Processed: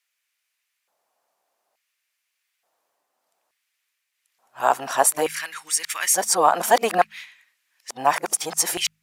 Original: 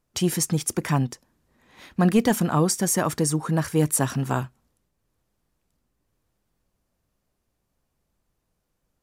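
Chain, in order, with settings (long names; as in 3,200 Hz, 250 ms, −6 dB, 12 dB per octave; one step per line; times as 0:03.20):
played backwards from end to start
auto-filter high-pass square 0.57 Hz 710–2,200 Hz
hum removal 52.53 Hz, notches 4
level +4.5 dB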